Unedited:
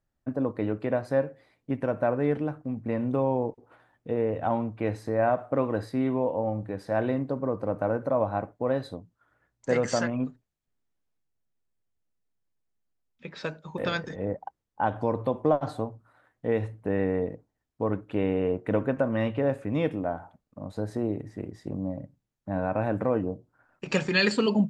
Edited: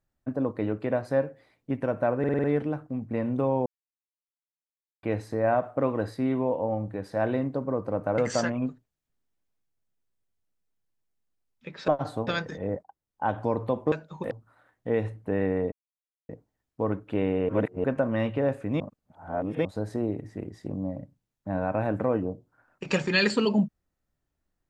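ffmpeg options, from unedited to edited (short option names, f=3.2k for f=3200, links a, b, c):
-filter_complex "[0:a]asplit=19[a][b][c][d][e][f][g][h][i][j][k][l][m][n][o][p][q][r][s];[a]atrim=end=2.242[t];[b]atrim=start=2.188:end=2.242[u];[c]atrim=start=2.188:end=2.242[v];[d]atrim=start=2.188:end=2.242[w];[e]atrim=start=2.188:end=2.242[x];[f]atrim=start=2.188:end=3.41,asetpts=PTS-STARTPTS,afade=t=out:st=1.218:d=0.004:c=hsin[y];[g]atrim=start=3.41:end=4.78,asetpts=PTS-STARTPTS,volume=0[z];[h]atrim=start=4.78:end=7.932,asetpts=PTS-STARTPTS,afade=t=in:d=0.004:c=hsin[aa];[i]atrim=start=9.758:end=13.462[ab];[j]atrim=start=15.498:end=15.892[ac];[k]atrim=start=13.848:end=14.41,asetpts=PTS-STARTPTS,afade=t=out:st=0.558:d=0.004:c=hsin:silence=0.125893[ad];[l]atrim=start=14.41:end=15.502,asetpts=PTS-STARTPTS,afade=t=in:d=0.5:silence=0.125893[ae];[m]atrim=start=13.458:end=13.852[af];[n]atrim=start=15.888:end=17.3,asetpts=PTS-STARTPTS,afade=t=out:st=1.408:d=0.004:c=hsin,apad=pad_dur=0.57[ag];[o]atrim=start=17.3:end=18.502,asetpts=PTS-STARTPTS,afade=t=in:d=0.004:c=hsin[ah];[p]atrim=start=18.498:end=18.852,asetpts=PTS-STARTPTS,areverse[ai];[q]atrim=start=18.848:end=19.812[aj];[r]atrim=start=19.808:end=20.662,asetpts=PTS-STARTPTS,areverse[ak];[s]atrim=start=20.658[al];[t][u]acrossfade=d=0.004:c1=hsin:c2=hsin[am];[am][v]acrossfade=d=0.004:c1=hsin:c2=hsin[an];[an][w]acrossfade=d=0.004:c1=hsin:c2=hsin[ao];[ao][x]acrossfade=d=0.004:c1=hsin:c2=hsin[ap];[y][z][aa]concat=n=3:v=0:a=1[aq];[ap][aq]acrossfade=d=0.004:c1=hsin:c2=hsin[ar];[ar][ab]acrossfade=d=0.004:c1=hsin:c2=hsin[as];[as][ac]acrossfade=d=0.004:c1=hsin:c2=hsin[at];[ad][ae]concat=n=2:v=0:a=1[au];[at][au]acrossfade=d=0.004:c1=hsin:c2=hsin[av];[av][af]acrossfade=d=0.004:c1=hsin:c2=hsin[aw];[ag][ah]concat=n=2:v=0:a=1[ax];[aw][ax]acrossfade=d=0.004:c1=hsin:c2=hsin[ay];[ay][ai]acrossfade=d=0.004:c1=hsin:c2=hsin[az];[az][aj]acrossfade=d=0.004:c1=hsin:c2=hsin[ba];[ba][ak]acrossfade=d=0.004:c1=hsin:c2=hsin[bb];[bb][al]acrossfade=d=0.004:c1=hsin:c2=hsin"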